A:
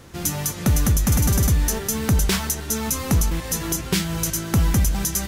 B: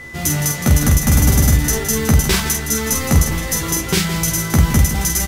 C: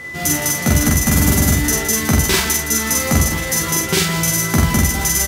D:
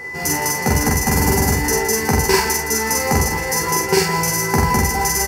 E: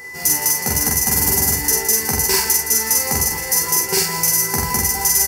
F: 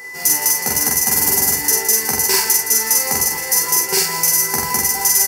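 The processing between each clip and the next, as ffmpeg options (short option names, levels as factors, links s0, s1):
-filter_complex "[0:a]asplit=2[s0][s1];[s1]aecho=0:1:13|47:0.596|0.631[s2];[s0][s2]amix=inputs=2:normalize=0,aeval=exprs='val(0)+0.0158*sin(2*PI*2000*n/s)':c=same,asplit=2[s3][s4];[s4]aecho=0:1:165:0.282[s5];[s3][s5]amix=inputs=2:normalize=0,volume=1.41"
-filter_complex "[0:a]highpass=f=120:p=1,areverse,acompressor=mode=upward:threshold=0.0631:ratio=2.5,areverse,asplit=2[s0][s1];[s1]adelay=44,volume=0.794[s2];[s0][s2]amix=inputs=2:normalize=0"
-af "superequalizer=7b=3.16:9b=3.98:11b=1.58:13b=0.316:14b=1.58,volume=0.668"
-af "crystalizer=i=3.5:c=0,aeval=exprs='clip(val(0),-1,0.841)':c=same,volume=0.422"
-af "highpass=f=300:p=1,volume=1.19"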